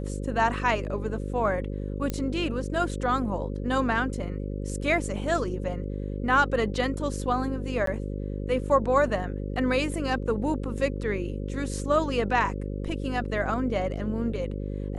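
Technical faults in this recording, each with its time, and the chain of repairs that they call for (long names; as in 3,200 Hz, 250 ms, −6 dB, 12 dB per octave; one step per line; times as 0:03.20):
mains buzz 50 Hz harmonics 11 −32 dBFS
0:02.10: click −15 dBFS
0:07.86–0:07.87: drop-out 13 ms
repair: click removal
hum removal 50 Hz, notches 11
repair the gap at 0:07.86, 13 ms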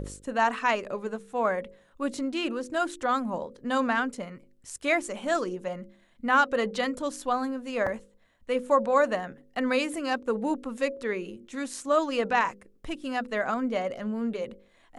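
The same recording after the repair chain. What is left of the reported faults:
none of them is left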